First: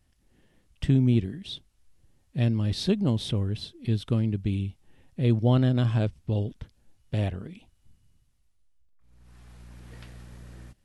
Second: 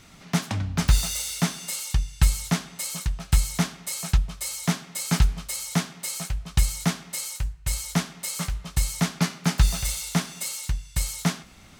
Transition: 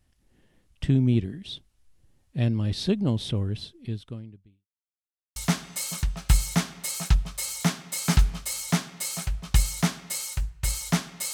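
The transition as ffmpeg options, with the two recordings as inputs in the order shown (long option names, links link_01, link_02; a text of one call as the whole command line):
ffmpeg -i cue0.wav -i cue1.wav -filter_complex "[0:a]apad=whole_dur=11.33,atrim=end=11.33,asplit=2[link_01][link_02];[link_01]atrim=end=4.67,asetpts=PTS-STARTPTS,afade=type=out:start_time=3.6:duration=1.07:curve=qua[link_03];[link_02]atrim=start=4.67:end=5.36,asetpts=PTS-STARTPTS,volume=0[link_04];[1:a]atrim=start=2.39:end=8.36,asetpts=PTS-STARTPTS,afade=type=in:duration=0.004:curve=hsin[link_05];[link_03][link_04][link_05]concat=n=3:v=0:a=1" out.wav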